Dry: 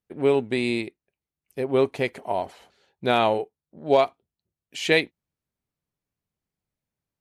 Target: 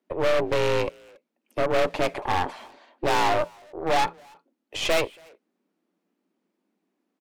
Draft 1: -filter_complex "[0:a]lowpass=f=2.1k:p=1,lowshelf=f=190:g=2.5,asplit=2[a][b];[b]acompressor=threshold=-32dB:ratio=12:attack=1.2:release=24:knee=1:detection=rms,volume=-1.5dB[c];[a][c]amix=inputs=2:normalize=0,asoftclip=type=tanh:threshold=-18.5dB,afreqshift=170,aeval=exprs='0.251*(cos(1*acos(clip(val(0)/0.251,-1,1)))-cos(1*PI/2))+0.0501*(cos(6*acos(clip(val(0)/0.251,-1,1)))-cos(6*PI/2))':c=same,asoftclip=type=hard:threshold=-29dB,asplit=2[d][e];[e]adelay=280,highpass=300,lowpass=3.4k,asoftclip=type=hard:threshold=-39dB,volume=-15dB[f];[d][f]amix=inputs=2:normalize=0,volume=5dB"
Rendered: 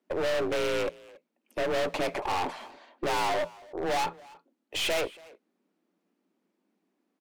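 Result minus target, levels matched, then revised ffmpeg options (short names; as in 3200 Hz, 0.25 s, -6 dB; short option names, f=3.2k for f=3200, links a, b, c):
compressor: peak gain reduction -9 dB; hard clip: distortion +6 dB
-filter_complex "[0:a]lowpass=f=2.1k:p=1,lowshelf=f=190:g=2.5,asplit=2[a][b];[b]acompressor=threshold=-42dB:ratio=12:attack=1.2:release=24:knee=1:detection=rms,volume=-1.5dB[c];[a][c]amix=inputs=2:normalize=0,asoftclip=type=tanh:threshold=-18.5dB,afreqshift=170,aeval=exprs='0.251*(cos(1*acos(clip(val(0)/0.251,-1,1)))-cos(1*PI/2))+0.0501*(cos(6*acos(clip(val(0)/0.251,-1,1)))-cos(6*PI/2))':c=same,asoftclip=type=hard:threshold=-20.5dB,asplit=2[d][e];[e]adelay=280,highpass=300,lowpass=3.4k,asoftclip=type=hard:threshold=-39dB,volume=-15dB[f];[d][f]amix=inputs=2:normalize=0,volume=5dB"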